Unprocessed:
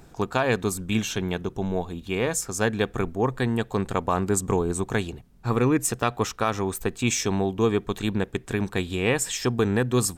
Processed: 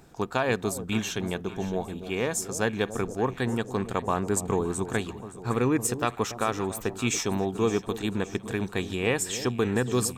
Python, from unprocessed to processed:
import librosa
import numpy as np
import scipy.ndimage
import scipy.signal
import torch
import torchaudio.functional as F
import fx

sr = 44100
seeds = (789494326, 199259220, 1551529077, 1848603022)

p1 = fx.low_shelf(x, sr, hz=69.0, db=-8.5)
p2 = p1 + fx.echo_alternate(p1, sr, ms=284, hz=830.0, feedback_pct=71, wet_db=-12, dry=0)
y = p2 * 10.0 ** (-2.5 / 20.0)